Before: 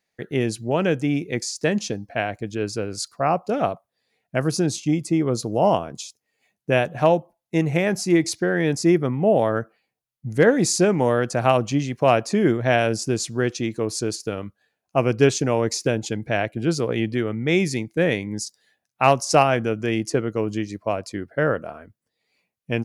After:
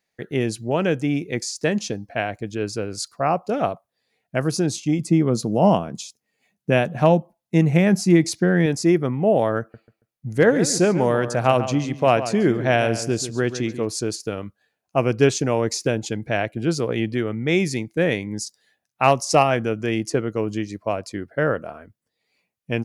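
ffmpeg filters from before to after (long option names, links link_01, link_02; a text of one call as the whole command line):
ffmpeg -i in.wav -filter_complex "[0:a]asettb=1/sr,asplit=3[link_01][link_02][link_03];[link_01]atrim=end=4.994[link_04];[link_02]atrim=start=4.99:end=8.66,asetpts=PTS-STARTPTS,afade=type=in:duration=0.004:curve=qsin,afade=type=out:start_time=3.666:duration=0.004:curve=qsin,equalizer=frequency=190:width_type=o:width=0.77:gain=9[link_05];[link_03]atrim=start=8.656[link_06];[link_04][link_05]acrossfade=duration=0.004:curve1=hsin:curve2=qsin[link_07];[link_07][link_06]acrossfade=duration=0.004:curve1=qsin:curve2=hsin,asettb=1/sr,asplit=3[link_08][link_09][link_10];[link_08]atrim=end=9.604[link_11];[link_09]atrim=start=9.6:end=13.87,asetpts=PTS-STARTPTS,afade=type=in:duration=0.004:curve=qsin,afade=type=out:start_time=4.266:duration=0.004:curve=qsin,asplit=2[link_12][link_13];[link_13]adelay=139,lowpass=frequency=2900:poles=1,volume=-11dB,asplit=2[link_14][link_15];[link_15]adelay=139,lowpass=frequency=2900:poles=1,volume=0.27,asplit=2[link_16][link_17];[link_17]adelay=139,lowpass=frequency=2900:poles=1,volume=0.27[link_18];[link_12][link_14][link_16][link_18]amix=inputs=4:normalize=0,atrim=end_sample=188307[link_19];[link_10]atrim=start=13.866[link_20];[link_11][link_19]acrossfade=duration=0.004:curve1=hsin:curve2=qsin[link_21];[link_21][link_20]acrossfade=duration=0.004:curve1=qsin:curve2=hsin,asettb=1/sr,asplit=3[link_22][link_23][link_24];[link_22]atrim=end=19.114[link_25];[link_23]atrim=start=19.11:end=19.51,asetpts=PTS-STARTPTS,afade=type=in:duration=0.004:curve=qsin,afade=type=out:start_time=0.396:duration=0.004:curve=qsin,asuperstop=centerf=1500:order=4:qfactor=5.8[link_26];[link_24]atrim=start=19.506[link_27];[link_25][link_26]acrossfade=duration=0.004:curve1=hsin:curve2=qsin[link_28];[link_28][link_27]acrossfade=duration=0.004:curve1=qsin:curve2=hsin" out.wav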